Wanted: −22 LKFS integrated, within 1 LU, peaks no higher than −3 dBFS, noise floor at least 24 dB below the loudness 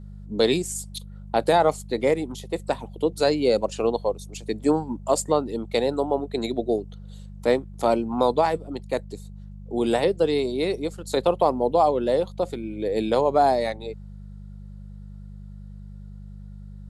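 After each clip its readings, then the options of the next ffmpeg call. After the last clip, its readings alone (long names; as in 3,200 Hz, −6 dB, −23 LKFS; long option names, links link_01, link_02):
mains hum 50 Hz; hum harmonics up to 200 Hz; level of the hum −37 dBFS; integrated loudness −24.0 LKFS; sample peak −6.5 dBFS; target loudness −22.0 LKFS
→ -af "bandreject=frequency=50:width_type=h:width=4,bandreject=frequency=100:width_type=h:width=4,bandreject=frequency=150:width_type=h:width=4,bandreject=frequency=200:width_type=h:width=4"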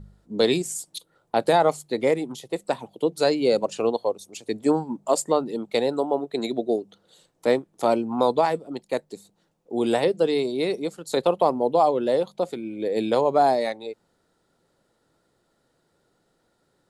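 mains hum none found; integrated loudness −24.0 LKFS; sample peak −6.5 dBFS; target loudness −22.0 LKFS
→ -af "volume=2dB"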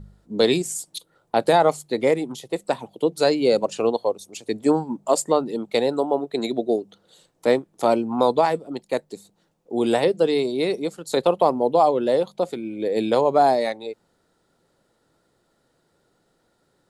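integrated loudness −22.0 LKFS; sample peak −4.5 dBFS; background noise floor −68 dBFS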